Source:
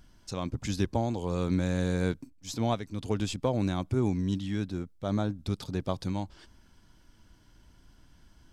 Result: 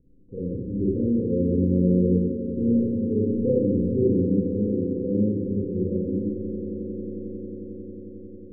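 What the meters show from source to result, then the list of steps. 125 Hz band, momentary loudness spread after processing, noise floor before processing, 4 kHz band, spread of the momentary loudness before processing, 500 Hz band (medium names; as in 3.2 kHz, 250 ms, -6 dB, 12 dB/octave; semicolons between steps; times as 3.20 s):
+4.5 dB, 15 LU, -60 dBFS, under -40 dB, 8 LU, +9.0 dB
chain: gate -49 dBFS, range -19 dB; Chebyshev low-pass 530 Hz, order 10; bass shelf 210 Hz -11.5 dB; upward compressor, threshold -53 dBFS; on a send: echo with a slow build-up 90 ms, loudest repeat 8, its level -16.5 dB; on the sum: Schroeder reverb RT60 0.98 s, combs from 30 ms, DRR -6.5 dB; trim +4.5 dB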